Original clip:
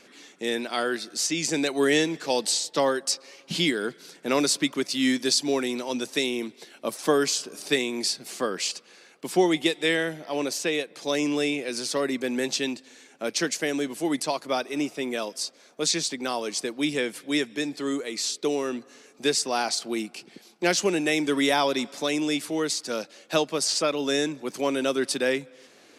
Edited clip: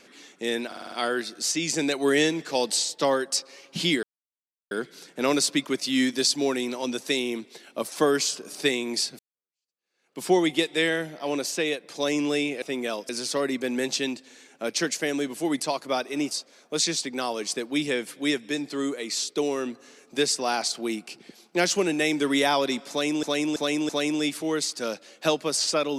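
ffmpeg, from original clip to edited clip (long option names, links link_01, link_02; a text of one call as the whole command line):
ffmpeg -i in.wav -filter_complex "[0:a]asplit=14[link_01][link_02][link_03][link_04][link_05][link_06][link_07][link_08][link_09][link_10][link_11][link_12][link_13][link_14];[link_01]atrim=end=0.722[link_15];[link_02]atrim=start=0.668:end=0.722[link_16];[link_03]atrim=start=0.668:end=0.722[link_17];[link_04]atrim=start=0.668:end=0.722[link_18];[link_05]atrim=start=0.668:end=0.722[link_19];[link_06]atrim=start=0.668:end=3.78,asetpts=PTS-STARTPTS,afade=type=out:start_time=3.108:duration=0.004:curve=hsin,apad=pad_dur=0.68[link_20];[link_07]atrim=start=3.78:end=8.26,asetpts=PTS-STARTPTS,afade=type=in:duration=0.004:curve=hsin,afade=type=out:start_time=4.476:duration=0.004:curve=hsin[link_21];[link_08]atrim=start=8.26:end=11.692,asetpts=PTS-STARTPTS,afade=type=in:duration=1.02:curve=exp[link_22];[link_09]atrim=start=14.908:end=15.382[link_23];[link_10]atrim=start=11.688:end=14.912[link_24];[link_11]atrim=start=15.378:end=22.302[link_25];[link_12]atrim=start=21.968:end=22.302[link_26];[link_13]atrim=start=21.968:end=22.302[link_27];[link_14]atrim=start=21.968[link_28];[link_15][link_16]acrossfade=duration=0.004:curve1=hsin:curve2=hsin[link_29];[link_29][link_17]acrossfade=duration=0.004:curve1=hsin:curve2=hsin[link_30];[link_30][link_18]acrossfade=duration=0.004:curve1=hsin:curve2=hsin[link_31];[link_31][link_19]acrossfade=duration=0.004:curve1=hsin:curve2=hsin[link_32];[link_20][link_21][link_22]concat=n=3:v=0:a=1[link_33];[link_32][link_33]acrossfade=duration=0.004:curve1=hsin:curve2=hsin[link_34];[link_34][link_23]acrossfade=duration=0.004:curve1=hsin:curve2=hsin[link_35];[link_35][link_24]acrossfade=duration=0.004:curve1=hsin:curve2=hsin[link_36];[link_36][link_25]acrossfade=duration=0.004:curve1=hsin:curve2=hsin[link_37];[link_37][link_26]acrossfade=duration=0.004:curve1=hsin:curve2=hsin[link_38];[link_38][link_27]acrossfade=duration=0.004:curve1=hsin:curve2=hsin[link_39];[link_39][link_28]acrossfade=duration=0.004:curve1=hsin:curve2=hsin" out.wav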